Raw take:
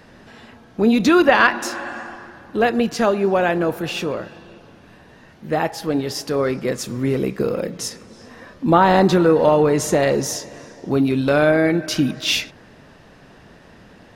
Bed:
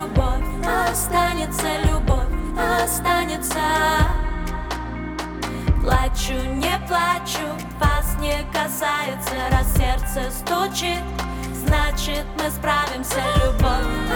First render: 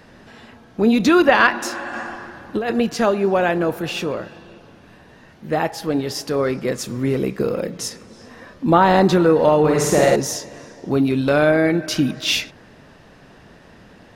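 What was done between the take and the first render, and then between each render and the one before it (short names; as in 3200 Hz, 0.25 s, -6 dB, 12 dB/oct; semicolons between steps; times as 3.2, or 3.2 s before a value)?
1.93–2.73 negative-ratio compressor -21 dBFS; 9.59–10.16 flutter echo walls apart 8.9 m, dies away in 0.98 s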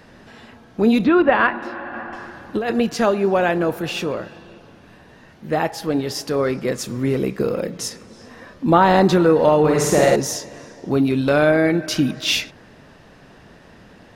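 1.04–2.13 air absorption 430 m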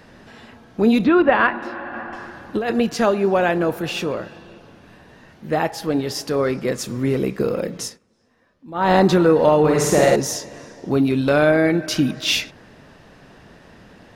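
7.81–8.92 dip -21 dB, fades 0.18 s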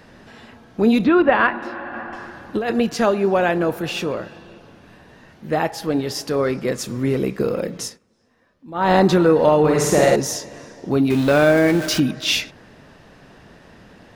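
11.1–12 zero-crossing step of -24.5 dBFS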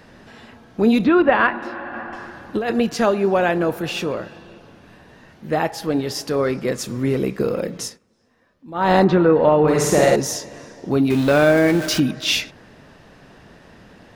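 9.04–9.68 LPF 2600 Hz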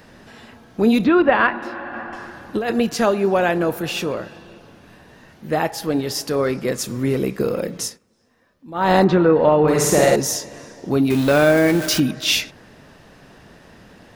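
high shelf 7800 Hz +7.5 dB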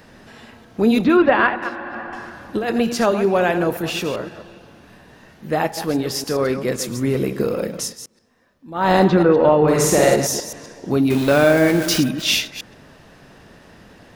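reverse delay 0.13 s, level -10 dB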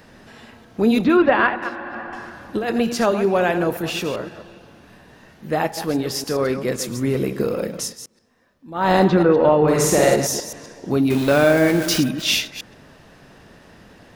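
gain -1 dB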